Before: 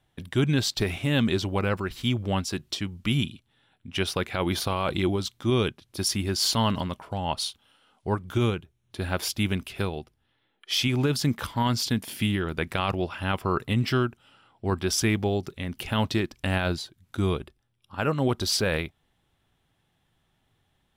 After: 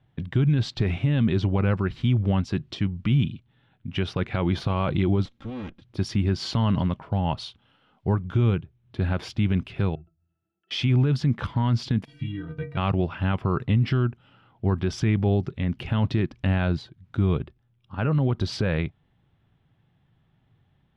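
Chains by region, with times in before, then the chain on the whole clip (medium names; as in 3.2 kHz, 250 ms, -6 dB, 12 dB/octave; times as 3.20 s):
5.25–5.82 s: comb filter that takes the minimum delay 3.7 ms + compression 2.5:1, threshold -42 dBFS
9.95–10.71 s: overload inside the chain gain 27.5 dB + compression 5:1, threshold -40 dBFS + pitch-class resonator E, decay 0.13 s
12.05–12.77 s: low-pass 8.3 kHz + bass shelf 230 Hz +9.5 dB + inharmonic resonator 140 Hz, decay 0.39 s, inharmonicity 0.03
whole clip: low-pass 3 kHz 12 dB/octave; peaking EQ 130 Hz +11 dB 1.7 oct; peak limiter -14 dBFS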